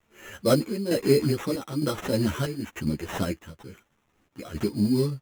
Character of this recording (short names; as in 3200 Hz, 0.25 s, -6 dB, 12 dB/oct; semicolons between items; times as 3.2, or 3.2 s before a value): a quantiser's noise floor 12-bit, dither none; chopped level 1.1 Hz, depth 65%, duty 70%; aliases and images of a low sample rate 4600 Hz, jitter 0%; a shimmering, thickened sound